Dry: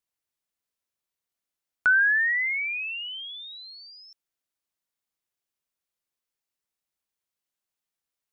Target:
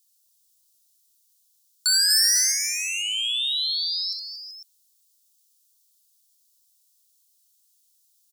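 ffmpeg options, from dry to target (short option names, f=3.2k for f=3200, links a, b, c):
-filter_complex "[0:a]asettb=1/sr,asplit=3[a][b][c];[a]atrim=end=2.104[d];[b]atrim=start=2.1:end=2.52,asetpts=PTS-STARTPTS,afade=t=in:d=0.004:c=qsin,afade=t=out:st=0.416:d=0.004:c=qsin,adynamicsmooth=sensitivity=2.5:basefreq=900[e];[c]atrim=start=2.516[f];[d][e]acrossfade=d=0.004:c1=hsin:c2=qsin[g];[g][f]acrossfade=d=0.004:c1=qsin:c2=hsin,asoftclip=type=tanh:threshold=-26.5dB,aexciter=amount=14.3:drive=6.9:freq=3.3k,asplit=2[h][i];[i]aecho=0:1:64|228|381|499:0.447|0.266|0.2|0.237[j];[h][j]amix=inputs=2:normalize=0,volume=-6dB"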